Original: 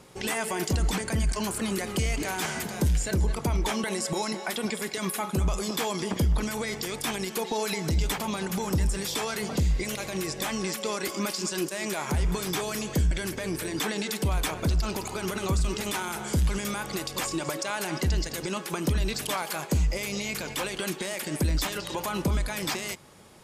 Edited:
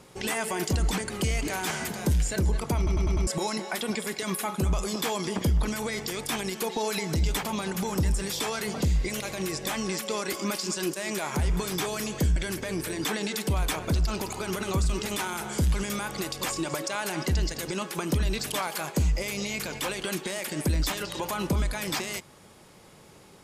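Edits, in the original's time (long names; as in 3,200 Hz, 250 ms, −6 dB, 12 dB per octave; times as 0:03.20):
0:01.10–0:01.85: remove
0:03.52: stutter in place 0.10 s, 5 plays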